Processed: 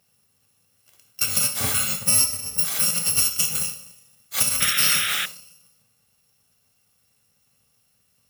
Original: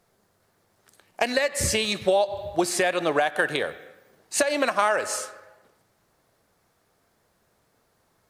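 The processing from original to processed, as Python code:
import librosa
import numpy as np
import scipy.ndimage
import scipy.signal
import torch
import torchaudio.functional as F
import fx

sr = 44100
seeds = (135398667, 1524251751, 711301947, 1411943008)

y = fx.bit_reversed(x, sr, seeds[0], block=128)
y = scipy.signal.sosfilt(scipy.signal.butter(2, 65.0, 'highpass', fs=sr, output='sos'), y)
y = fx.rev_gated(y, sr, seeds[1], gate_ms=150, shape='falling', drr_db=3.0)
y = fx.spec_paint(y, sr, seeds[2], shape='noise', start_s=4.6, length_s=0.66, low_hz=1200.0, high_hz=3900.0, level_db=-26.0)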